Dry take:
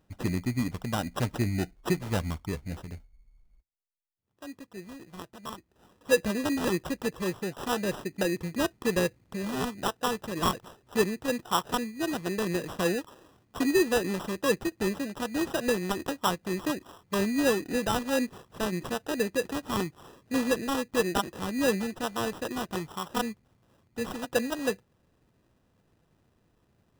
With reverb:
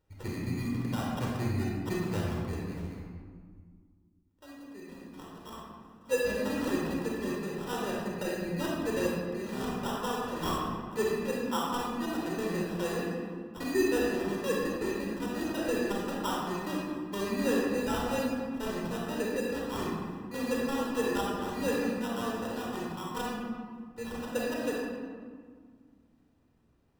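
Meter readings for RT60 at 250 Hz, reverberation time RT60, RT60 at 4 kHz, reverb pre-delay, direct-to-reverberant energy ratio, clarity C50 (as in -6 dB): 2.8 s, 1.8 s, 1.0 s, 30 ms, -4.0 dB, -1.5 dB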